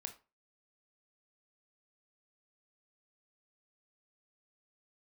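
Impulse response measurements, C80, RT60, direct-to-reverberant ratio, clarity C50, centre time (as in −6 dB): 19.5 dB, 0.30 s, 6.0 dB, 13.0 dB, 9 ms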